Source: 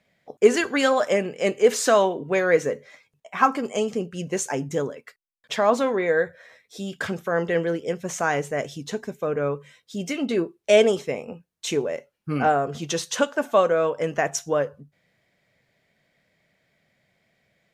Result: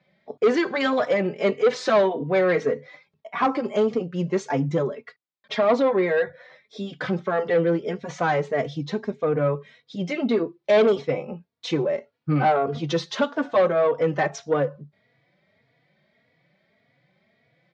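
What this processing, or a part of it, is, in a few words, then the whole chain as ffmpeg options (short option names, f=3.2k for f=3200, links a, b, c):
barber-pole flanger into a guitar amplifier: -filter_complex "[0:a]asplit=2[a][b];[b]adelay=3.5,afreqshift=1.7[c];[a][c]amix=inputs=2:normalize=1,asoftclip=type=tanh:threshold=-19.5dB,highpass=110,equalizer=f=140:t=q:w=4:g=4,equalizer=f=1.6k:t=q:w=4:g=-4,equalizer=f=2.8k:t=q:w=4:g=-7,lowpass=f=4.3k:w=0.5412,lowpass=f=4.3k:w=1.3066,volume=6.5dB"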